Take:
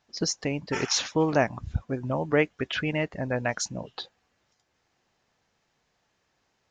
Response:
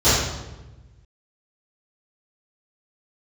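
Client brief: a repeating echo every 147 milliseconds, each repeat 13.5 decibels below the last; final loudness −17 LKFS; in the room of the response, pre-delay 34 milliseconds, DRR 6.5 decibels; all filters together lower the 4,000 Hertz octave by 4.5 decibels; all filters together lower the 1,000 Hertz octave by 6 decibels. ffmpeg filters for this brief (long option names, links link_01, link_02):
-filter_complex "[0:a]equalizer=frequency=1000:width_type=o:gain=-8.5,equalizer=frequency=4000:width_type=o:gain=-6,aecho=1:1:147|294:0.211|0.0444,asplit=2[link_01][link_02];[1:a]atrim=start_sample=2205,adelay=34[link_03];[link_02][link_03]afir=irnorm=-1:irlink=0,volume=-29dB[link_04];[link_01][link_04]amix=inputs=2:normalize=0,volume=10.5dB"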